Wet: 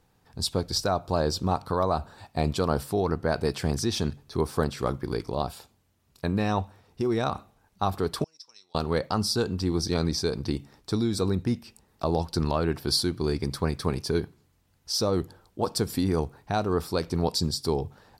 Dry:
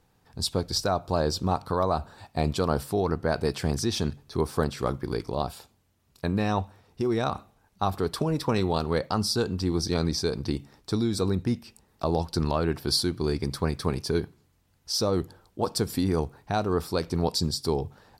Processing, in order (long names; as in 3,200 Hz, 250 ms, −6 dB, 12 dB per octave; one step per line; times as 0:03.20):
0:08.24–0:08.75: resonant band-pass 5,400 Hz, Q 10